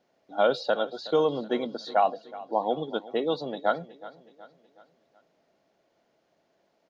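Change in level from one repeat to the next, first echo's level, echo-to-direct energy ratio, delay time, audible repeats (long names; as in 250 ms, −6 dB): −7.0 dB, −18.0 dB, −17.0 dB, 371 ms, 3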